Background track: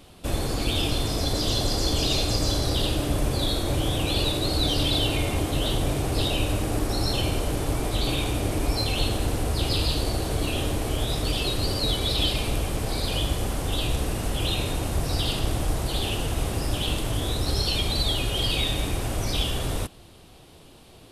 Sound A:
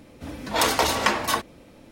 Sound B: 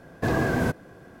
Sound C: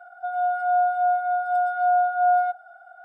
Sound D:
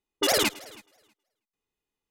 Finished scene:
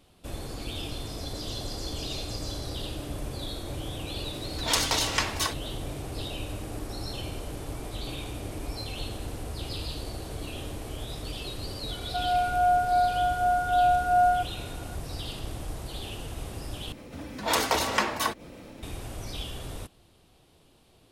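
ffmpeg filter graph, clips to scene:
ffmpeg -i bed.wav -i cue0.wav -i cue1.wav -i cue2.wav -filter_complex "[1:a]asplit=2[link_01][link_02];[0:a]volume=-10.5dB[link_03];[link_01]equalizer=frequency=5700:width=0.39:gain=11.5[link_04];[link_02]acompressor=mode=upward:threshold=-31dB:ratio=2.5:attack=3.2:release=140:knee=2.83:detection=peak[link_05];[link_03]asplit=2[link_06][link_07];[link_06]atrim=end=16.924[link_08];[link_05]atrim=end=1.91,asetpts=PTS-STARTPTS,volume=-4dB[link_09];[link_07]atrim=start=18.826[link_10];[link_04]atrim=end=1.91,asetpts=PTS-STARTPTS,volume=-11dB,afade=type=in:duration=0.004:curve=hsin,afade=type=out:start_time=1.906:duration=0.004:curve=hsin,adelay=4120[link_11];[3:a]atrim=end=3.04,asetpts=PTS-STARTPTS,volume=-2dB,afade=type=in:duration=0.004:curve=hsin,afade=type=out:start_time=3.036:duration=0.004:curve=hsin,adelay=11910[link_12];[link_08][link_09]acrossfade=duration=0.004:curve1=hsin:curve2=hsin[link_13];[link_13][link_10]acrossfade=duration=0.004:curve1=hsin:curve2=hsin[link_14];[link_14][link_11][link_12]amix=inputs=3:normalize=0" out.wav

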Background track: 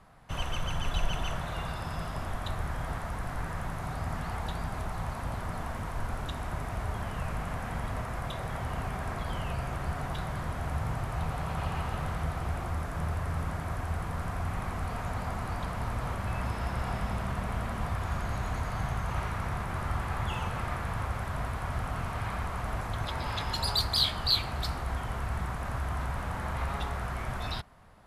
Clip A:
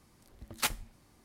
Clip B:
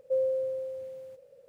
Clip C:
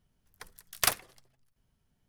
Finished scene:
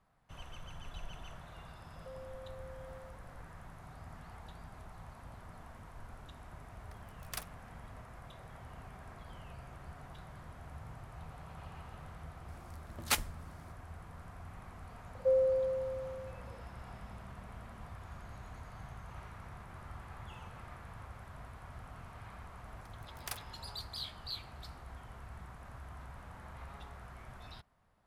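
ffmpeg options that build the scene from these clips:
ffmpeg -i bed.wav -i cue0.wav -i cue1.wav -i cue2.wav -filter_complex "[2:a]asplit=2[link_01][link_02];[3:a]asplit=2[link_03][link_04];[0:a]volume=-16dB[link_05];[link_01]acompressor=threshold=-41dB:ratio=6:attack=3.2:release=140:knee=1:detection=peak[link_06];[link_02]aresample=16000,aresample=44100[link_07];[link_06]atrim=end=1.48,asetpts=PTS-STARTPTS,volume=-8dB,afade=type=in:duration=0.004:curve=hsin,afade=type=out:start_time=1.476:duration=0.004:curve=hsin,adelay=1960[link_08];[link_03]atrim=end=2.08,asetpts=PTS-STARTPTS,volume=-16.5dB,afade=type=in:duration=0.004:curve=hsin,afade=type=out:start_time=2.076:duration=0.004:curve=hsin,adelay=286650S[link_09];[1:a]atrim=end=1.24,asetpts=PTS-STARTPTS,afade=type=in:duration=0.004:curve=hsin,afade=type=out:start_time=1.236:duration=0.004:curve=hsin,adelay=12480[link_10];[link_07]atrim=end=1.48,asetpts=PTS-STARTPTS,volume=-0.5dB,afade=type=in:duration=0.004:curve=hsin,afade=type=out:start_time=1.476:duration=0.004:curve=hsin,adelay=15150[link_11];[link_04]atrim=end=2.08,asetpts=PTS-STARTPTS,volume=-16.5dB,afade=type=in:duration=0.004:curve=hsin,afade=type=out:start_time=2.076:duration=0.004:curve=hsin,adelay=989604S[link_12];[link_05][link_08][link_09][link_10][link_11][link_12]amix=inputs=6:normalize=0" out.wav

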